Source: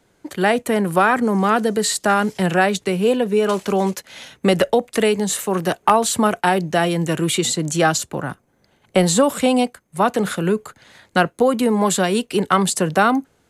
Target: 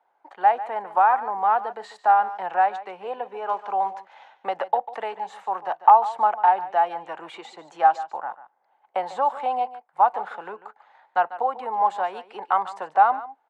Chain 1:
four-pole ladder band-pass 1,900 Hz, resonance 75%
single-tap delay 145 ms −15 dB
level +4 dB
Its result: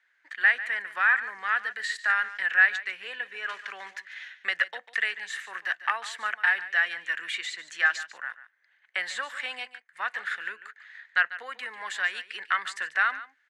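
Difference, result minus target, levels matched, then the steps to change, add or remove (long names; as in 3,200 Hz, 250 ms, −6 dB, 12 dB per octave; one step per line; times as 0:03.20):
2,000 Hz band +16.5 dB
change: four-pole ladder band-pass 890 Hz, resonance 75%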